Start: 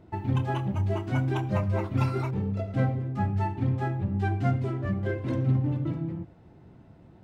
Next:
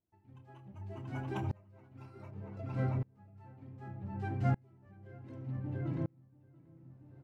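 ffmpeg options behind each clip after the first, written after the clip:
-filter_complex "[0:a]equalizer=f=3500:t=o:w=0.24:g=-5,asplit=2[s0][s1];[s1]adelay=684,lowpass=f=2500:p=1,volume=0.531,asplit=2[s2][s3];[s3]adelay=684,lowpass=f=2500:p=1,volume=0.37,asplit=2[s4][s5];[s5]adelay=684,lowpass=f=2500:p=1,volume=0.37,asplit=2[s6][s7];[s7]adelay=684,lowpass=f=2500:p=1,volume=0.37[s8];[s0][s2][s4][s6][s8]amix=inputs=5:normalize=0,aeval=exprs='val(0)*pow(10,-33*if(lt(mod(-0.66*n/s,1),2*abs(-0.66)/1000),1-mod(-0.66*n/s,1)/(2*abs(-0.66)/1000),(mod(-0.66*n/s,1)-2*abs(-0.66)/1000)/(1-2*abs(-0.66)/1000))/20)':c=same,volume=0.562"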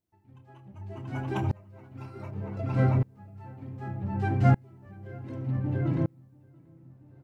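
-af "dynaudnorm=f=240:g=11:m=2.37,volume=1.33"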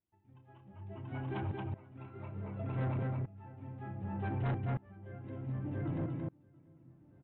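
-af "aecho=1:1:227:0.631,aresample=8000,asoftclip=type=tanh:threshold=0.0668,aresample=44100,volume=0.473"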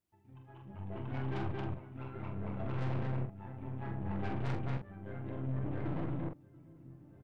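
-filter_complex "[0:a]asplit=2[s0][s1];[s1]alimiter=level_in=5.62:limit=0.0631:level=0:latency=1,volume=0.178,volume=1.26[s2];[s0][s2]amix=inputs=2:normalize=0,aeval=exprs='(tanh(63.1*val(0)+0.75)-tanh(0.75))/63.1':c=same,asplit=2[s3][s4];[s4]adelay=45,volume=0.501[s5];[s3][s5]amix=inputs=2:normalize=0,volume=1.12"

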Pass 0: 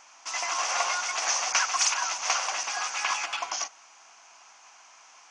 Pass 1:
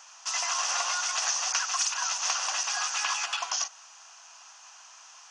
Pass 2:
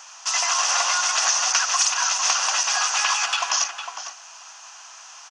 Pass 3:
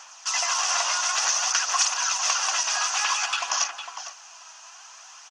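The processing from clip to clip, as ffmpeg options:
-af "highpass=f=1500:p=1,equalizer=f=2200:w=7.6:g=-12.5,acompressor=threshold=0.0316:ratio=6,volume=1.78"
-filter_complex "[0:a]asplit=2[s0][s1];[s1]adelay=454.8,volume=0.447,highshelf=f=4000:g=-10.2[s2];[s0][s2]amix=inputs=2:normalize=0,volume=2.37"
-af "aphaser=in_gain=1:out_gain=1:delay=3.2:decay=0.32:speed=0.55:type=sinusoidal,volume=0.668"

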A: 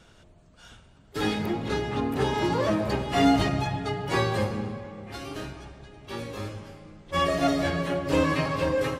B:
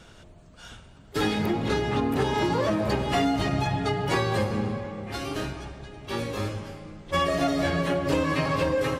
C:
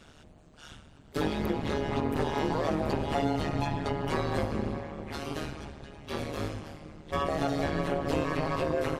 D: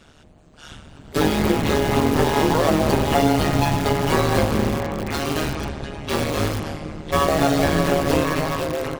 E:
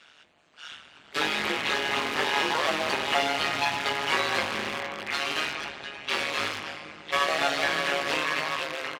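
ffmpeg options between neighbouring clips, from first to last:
-af "acompressor=threshold=0.0501:ratio=6,volume=1.78"
-filter_complex "[0:a]acrossover=split=1300[s0][s1];[s1]alimiter=level_in=1.58:limit=0.0631:level=0:latency=1:release=364,volume=0.631[s2];[s0][s2]amix=inputs=2:normalize=0,tremolo=f=150:d=0.974"
-filter_complex "[0:a]dynaudnorm=f=160:g=11:m=3.76,asplit=2[s0][s1];[s1]aeval=exprs='(mod(9.44*val(0)+1,2)-1)/9.44':c=same,volume=0.473[s2];[s0][s2]amix=inputs=2:normalize=0"
-filter_complex "[0:a]bandpass=f=2500:t=q:w=1.1:csg=0,asplit=2[s0][s1];[s1]adelay=20,volume=0.282[s2];[s0][s2]amix=inputs=2:normalize=0,volume=1.41"

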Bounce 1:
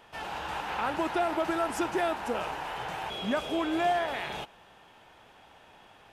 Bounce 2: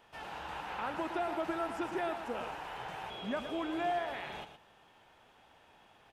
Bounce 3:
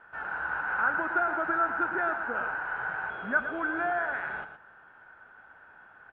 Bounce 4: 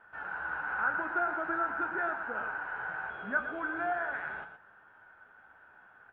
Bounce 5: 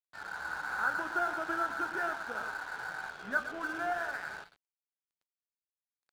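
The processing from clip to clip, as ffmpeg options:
-filter_complex "[0:a]asplit=2[s0][s1];[s1]adelay=116.6,volume=0.316,highshelf=f=4000:g=-2.62[s2];[s0][s2]amix=inputs=2:normalize=0,acrossover=split=3700[s3][s4];[s4]acompressor=threshold=0.00282:ratio=4:attack=1:release=60[s5];[s3][s5]amix=inputs=2:normalize=0,volume=0.447"
-af "lowpass=f=1500:t=q:w=14"
-af "flanger=delay=9:depth=8.2:regen=61:speed=0.41:shape=triangular"
-af "aeval=exprs='sgn(val(0))*max(abs(val(0))-0.00447,0)':c=same"

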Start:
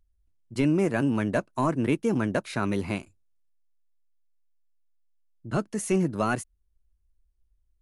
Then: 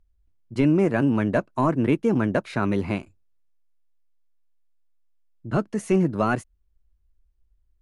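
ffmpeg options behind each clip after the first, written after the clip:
-af "lowpass=f=2400:p=1,volume=1.58"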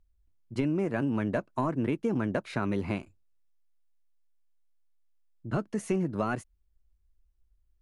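-af "acompressor=threshold=0.0891:ratio=6,volume=0.668"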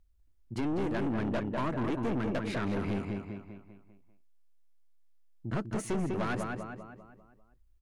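-filter_complex "[0:a]asplit=2[s0][s1];[s1]adelay=198,lowpass=f=4400:p=1,volume=0.501,asplit=2[s2][s3];[s3]adelay=198,lowpass=f=4400:p=1,volume=0.46,asplit=2[s4][s5];[s5]adelay=198,lowpass=f=4400:p=1,volume=0.46,asplit=2[s6][s7];[s7]adelay=198,lowpass=f=4400:p=1,volume=0.46,asplit=2[s8][s9];[s9]adelay=198,lowpass=f=4400:p=1,volume=0.46,asplit=2[s10][s11];[s11]adelay=198,lowpass=f=4400:p=1,volume=0.46[s12];[s0][s2][s4][s6][s8][s10][s12]amix=inputs=7:normalize=0,aeval=exprs='(tanh(35.5*val(0)+0.4)-tanh(0.4))/35.5':c=same,volume=1.41"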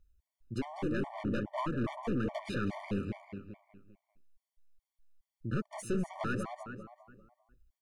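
-af "afftfilt=real='re*gt(sin(2*PI*2.4*pts/sr)*(1-2*mod(floor(b*sr/1024/600),2)),0)':imag='im*gt(sin(2*PI*2.4*pts/sr)*(1-2*mod(floor(b*sr/1024/600),2)),0)':win_size=1024:overlap=0.75"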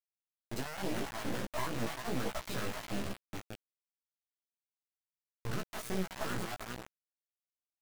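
-af "acrusher=bits=4:dc=4:mix=0:aa=0.000001,flanger=delay=15:depth=2.9:speed=1.3,volume=2.11"

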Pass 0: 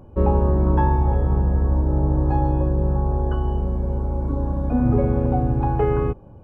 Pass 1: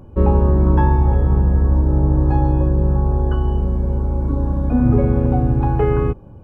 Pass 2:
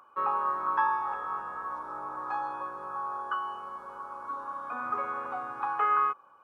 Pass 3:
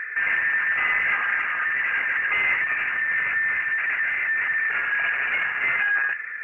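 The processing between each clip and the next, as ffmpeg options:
-af "equalizer=f=690:t=o:w=1.3:g=-4.5,volume=1.68"
-af "highpass=f=1200:t=q:w=7.8,volume=0.501"
-filter_complex "[0:a]asplit=2[s0][s1];[s1]highpass=f=720:p=1,volume=63.1,asoftclip=type=tanh:threshold=0.2[s2];[s0][s2]amix=inputs=2:normalize=0,lowpass=f=1500:p=1,volume=0.501,lowpass=f=2500:t=q:w=0.5098,lowpass=f=2500:t=q:w=0.6013,lowpass=f=2500:t=q:w=0.9,lowpass=f=2500:t=q:w=2.563,afreqshift=-2900" -ar 48000 -c:a libopus -b:a 10k

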